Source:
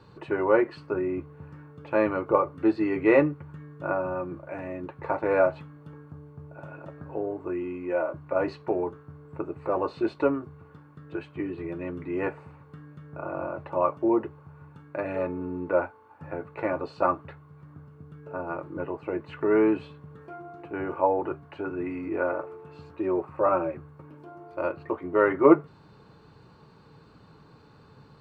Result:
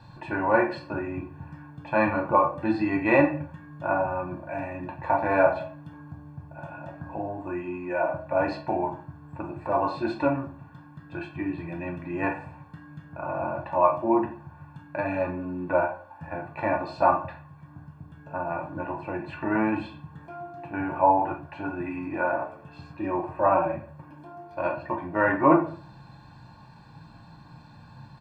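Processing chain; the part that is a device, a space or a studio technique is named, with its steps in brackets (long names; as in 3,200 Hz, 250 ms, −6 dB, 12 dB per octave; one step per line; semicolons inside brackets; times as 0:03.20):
microphone above a desk (comb filter 1.2 ms, depth 88%; convolution reverb RT60 0.45 s, pre-delay 10 ms, DRR 2 dB)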